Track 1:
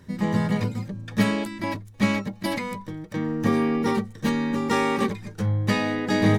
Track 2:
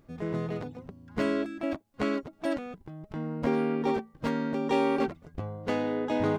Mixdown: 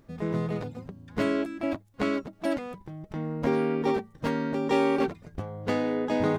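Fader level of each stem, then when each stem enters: −17.0, +1.5 decibels; 0.00, 0.00 seconds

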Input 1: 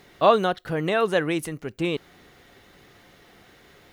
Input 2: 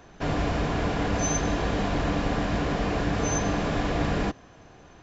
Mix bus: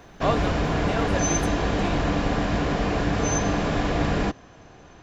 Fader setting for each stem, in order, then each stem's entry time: −8.5, +2.5 decibels; 0.00, 0.00 seconds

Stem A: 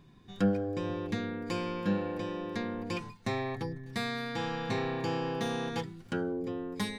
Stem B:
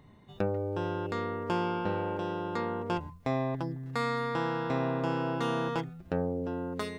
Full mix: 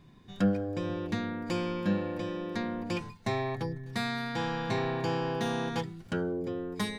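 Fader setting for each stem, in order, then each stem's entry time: +1.0, −11.0 decibels; 0.00, 0.00 seconds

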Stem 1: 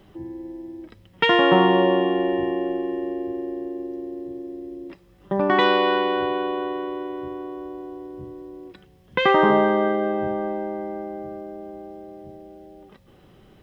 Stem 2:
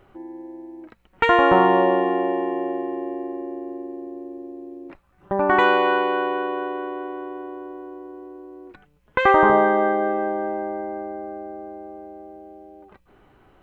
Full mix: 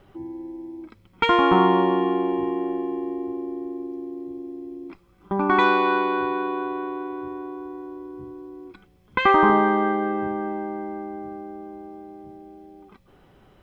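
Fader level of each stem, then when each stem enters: −5.0, −3.0 decibels; 0.00, 0.00 seconds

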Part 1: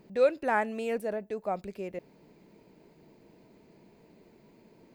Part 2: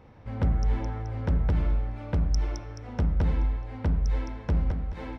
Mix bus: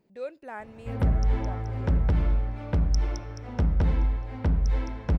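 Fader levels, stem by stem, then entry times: −12.0, +1.5 decibels; 0.00, 0.60 seconds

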